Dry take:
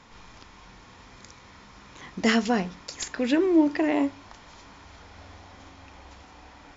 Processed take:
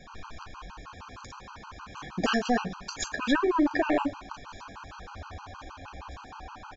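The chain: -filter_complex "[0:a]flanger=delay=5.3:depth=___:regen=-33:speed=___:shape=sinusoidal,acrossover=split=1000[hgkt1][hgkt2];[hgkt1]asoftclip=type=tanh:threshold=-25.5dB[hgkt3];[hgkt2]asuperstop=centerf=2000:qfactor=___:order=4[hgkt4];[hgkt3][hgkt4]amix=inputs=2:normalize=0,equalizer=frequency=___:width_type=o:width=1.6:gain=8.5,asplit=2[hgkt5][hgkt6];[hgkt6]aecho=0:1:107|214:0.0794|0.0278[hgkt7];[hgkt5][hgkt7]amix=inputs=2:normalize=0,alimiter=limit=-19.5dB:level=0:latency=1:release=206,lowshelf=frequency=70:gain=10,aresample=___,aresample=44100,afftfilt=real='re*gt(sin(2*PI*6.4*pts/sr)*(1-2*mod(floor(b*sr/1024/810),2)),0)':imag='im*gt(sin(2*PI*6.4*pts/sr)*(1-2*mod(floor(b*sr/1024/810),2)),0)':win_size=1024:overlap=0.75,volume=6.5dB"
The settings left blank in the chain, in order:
7, 1.4, 5.7, 1200, 16000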